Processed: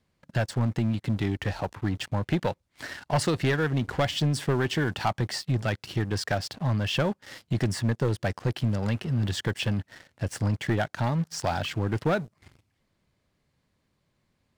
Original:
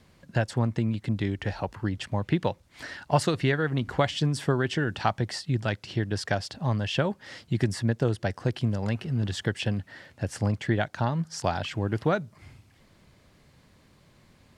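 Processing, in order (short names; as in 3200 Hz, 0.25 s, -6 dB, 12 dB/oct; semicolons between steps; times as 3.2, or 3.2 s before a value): sample leveller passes 3; gain -9 dB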